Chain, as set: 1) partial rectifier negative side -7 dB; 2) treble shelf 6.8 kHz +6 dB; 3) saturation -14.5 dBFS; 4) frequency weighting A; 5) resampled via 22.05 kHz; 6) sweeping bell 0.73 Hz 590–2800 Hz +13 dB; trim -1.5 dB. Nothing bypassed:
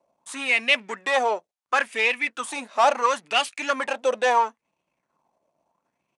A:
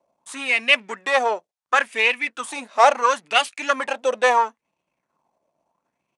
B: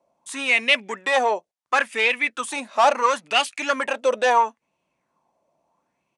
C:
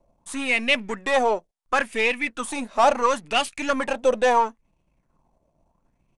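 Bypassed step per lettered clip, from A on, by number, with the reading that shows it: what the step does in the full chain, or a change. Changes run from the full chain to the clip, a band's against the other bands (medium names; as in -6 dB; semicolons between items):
3, distortion -11 dB; 1, distortion -8 dB; 4, 250 Hz band +8.0 dB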